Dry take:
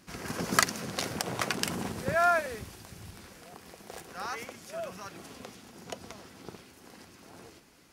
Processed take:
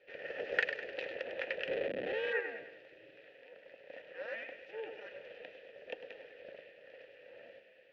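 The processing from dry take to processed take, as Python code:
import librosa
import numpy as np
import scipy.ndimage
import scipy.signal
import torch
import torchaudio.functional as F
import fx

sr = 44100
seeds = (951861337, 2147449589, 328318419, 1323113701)

p1 = fx.low_shelf(x, sr, hz=240.0, db=-4.0)
p2 = p1 + fx.echo_feedback(p1, sr, ms=101, feedback_pct=45, wet_db=-9.0, dry=0)
p3 = fx.schmitt(p2, sr, flips_db=-32.5, at=(1.68, 2.33))
p4 = fx.rider(p3, sr, range_db=4, speed_s=2.0)
p5 = p3 + F.gain(torch.from_numpy(p4), 2.5).numpy()
p6 = fx.ladder_lowpass(p5, sr, hz=3900.0, resonance_pct=30)
p7 = p6 * np.sin(2.0 * np.pi * 220.0 * np.arange(len(p6)) / sr)
p8 = fx.vowel_filter(p7, sr, vowel='e')
y = F.gain(torch.from_numpy(p8), 7.0).numpy()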